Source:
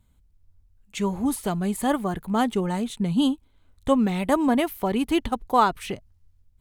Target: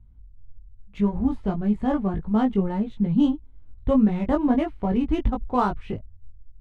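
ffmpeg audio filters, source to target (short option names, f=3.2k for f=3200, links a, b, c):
-af "aemphasis=mode=reproduction:type=riaa,adynamicsmooth=sensitivity=3.5:basefreq=3.3k,flanger=delay=18.5:depth=2:speed=1.7,volume=-1.5dB"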